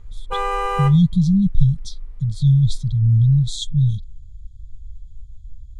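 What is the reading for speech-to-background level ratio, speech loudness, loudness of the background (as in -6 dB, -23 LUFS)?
6.5 dB, -18.0 LUFS, -24.5 LUFS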